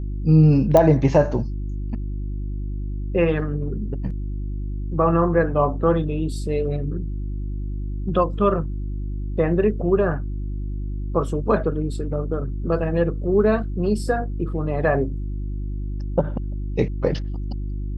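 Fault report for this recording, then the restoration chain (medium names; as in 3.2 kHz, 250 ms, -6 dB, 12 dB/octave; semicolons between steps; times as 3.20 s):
hum 50 Hz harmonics 7 -27 dBFS
0.77 s: pop -5 dBFS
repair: de-click; de-hum 50 Hz, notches 7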